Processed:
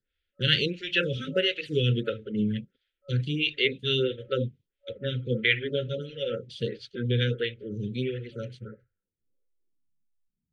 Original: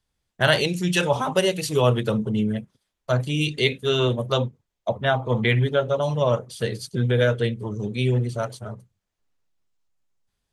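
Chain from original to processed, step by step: low-pass sweep 3200 Hz -> 200 Hz, 8.4–10.01; FFT band-reject 570–1300 Hz; photocell phaser 1.5 Hz; gain -2.5 dB

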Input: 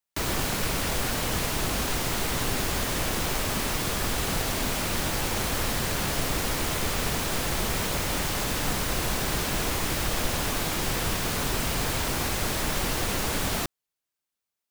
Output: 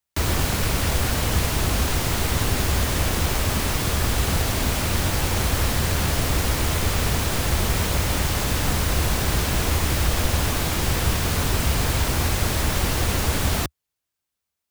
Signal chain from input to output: bell 74 Hz +11 dB 1.2 oct; gain +3 dB

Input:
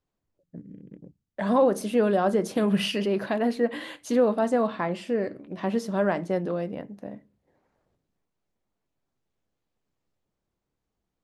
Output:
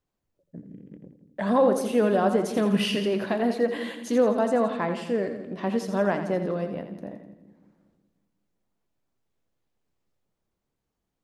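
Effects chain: split-band echo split 350 Hz, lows 0.187 s, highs 84 ms, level -9 dB

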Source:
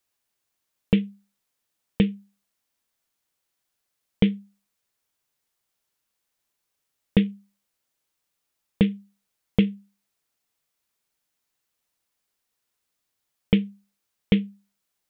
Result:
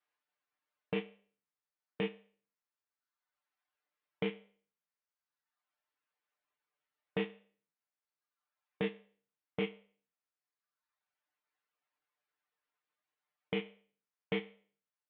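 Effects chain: spectral trails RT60 0.46 s; HPF 1100 Hz 6 dB/oct; reverb removal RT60 1.3 s; LPF 1800 Hz 12 dB/oct; comb 6.7 ms, depth 100%; limiter -22 dBFS, peak gain reduction 8.5 dB; gain -1 dB

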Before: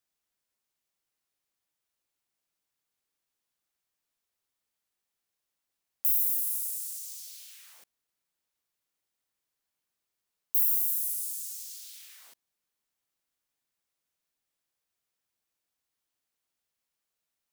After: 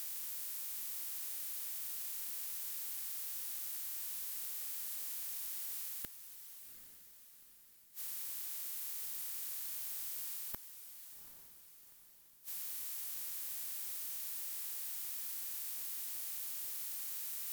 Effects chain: per-bin compression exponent 0.4; limiter -20 dBFS, peak gain reduction 11.5 dB; one-sided clip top -39 dBFS; reverse; upward compressor, threshold -40 dBFS; reverse; bell 610 Hz -3.5 dB 1.3 oct; flipped gate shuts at -28 dBFS, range -39 dB; high shelf 8200 Hz -5.5 dB; diffused feedback echo 0.792 s, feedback 45%, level -10.5 dB; gain +7 dB

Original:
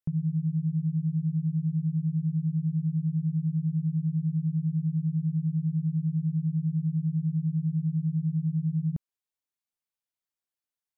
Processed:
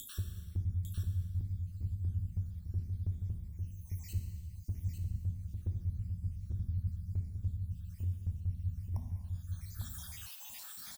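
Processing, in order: random spectral dropouts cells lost 75%; fixed phaser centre 300 Hz, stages 4; frequency shift -250 Hz; upward compressor, threshold -50 dBFS; dynamic EQ 130 Hz, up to +5 dB, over -57 dBFS, Q 2.7; echo 0.85 s -7 dB; non-linear reverb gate 0.47 s falling, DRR 4 dB; spectral compressor 2:1; gain +1 dB

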